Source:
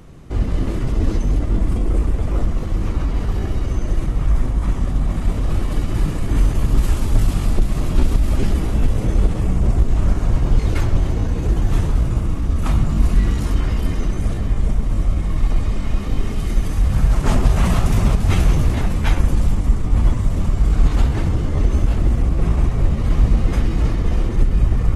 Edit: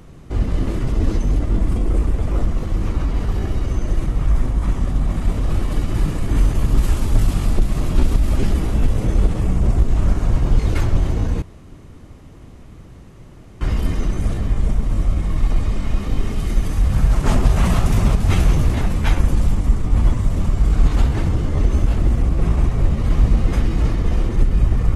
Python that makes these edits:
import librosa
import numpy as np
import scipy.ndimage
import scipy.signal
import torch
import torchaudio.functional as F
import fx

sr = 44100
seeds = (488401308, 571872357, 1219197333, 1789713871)

y = fx.edit(x, sr, fx.room_tone_fill(start_s=11.42, length_s=2.19), tone=tone)